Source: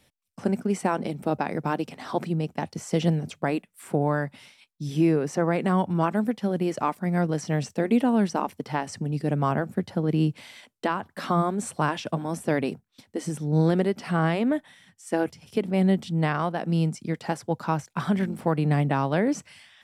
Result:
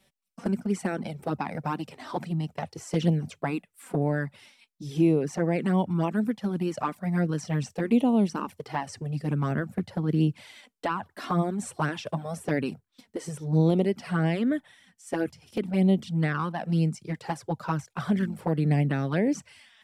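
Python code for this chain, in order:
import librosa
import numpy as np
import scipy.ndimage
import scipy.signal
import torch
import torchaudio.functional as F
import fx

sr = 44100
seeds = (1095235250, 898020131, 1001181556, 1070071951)

y = fx.env_flanger(x, sr, rest_ms=5.3, full_db=-17.5)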